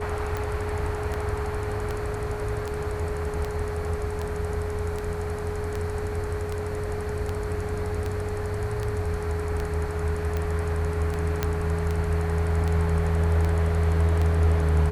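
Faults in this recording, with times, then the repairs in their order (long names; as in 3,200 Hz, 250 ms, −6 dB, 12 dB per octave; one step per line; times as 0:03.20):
scratch tick 78 rpm −16 dBFS
whistle 420 Hz −31 dBFS
0:11.43: click −10 dBFS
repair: click removal
notch filter 420 Hz, Q 30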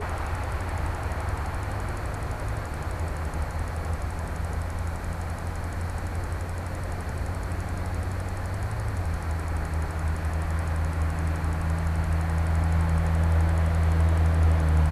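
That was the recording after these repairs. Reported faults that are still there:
none of them is left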